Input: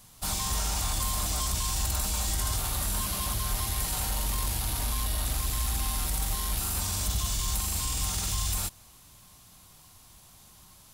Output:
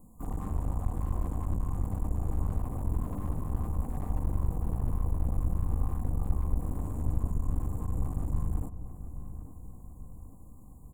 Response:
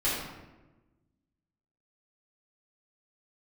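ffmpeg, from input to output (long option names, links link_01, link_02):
-filter_complex "[0:a]tiltshelf=frequency=930:gain=9,asplit=3[link_01][link_02][link_03];[link_02]asetrate=35002,aresample=44100,atempo=1.25992,volume=-10dB[link_04];[link_03]asetrate=66075,aresample=44100,atempo=0.66742,volume=-1dB[link_05];[link_01][link_04][link_05]amix=inputs=3:normalize=0,aecho=1:1:4:0.46,acrossover=split=1900[link_06][link_07];[link_07]acompressor=threshold=-48dB:ratio=5[link_08];[link_06][link_08]amix=inputs=2:normalize=0,afftfilt=real='re*(1-between(b*sr/4096,1200,6700))':imag='im*(1-between(b*sr/4096,1200,6700))':win_size=4096:overlap=0.75,aeval=exprs='clip(val(0),-1,0.0335)':channel_layout=same,asplit=2[link_09][link_10];[link_10]adelay=837,lowpass=frequency=1400:poles=1,volume=-12dB,asplit=2[link_11][link_12];[link_12]adelay=837,lowpass=frequency=1400:poles=1,volume=0.55,asplit=2[link_13][link_14];[link_14]adelay=837,lowpass=frequency=1400:poles=1,volume=0.55,asplit=2[link_15][link_16];[link_16]adelay=837,lowpass=frequency=1400:poles=1,volume=0.55,asplit=2[link_17][link_18];[link_18]adelay=837,lowpass=frequency=1400:poles=1,volume=0.55,asplit=2[link_19][link_20];[link_20]adelay=837,lowpass=frequency=1400:poles=1,volume=0.55[link_21];[link_11][link_13][link_15][link_17][link_19][link_21]amix=inputs=6:normalize=0[link_22];[link_09][link_22]amix=inputs=2:normalize=0,volume=-8dB"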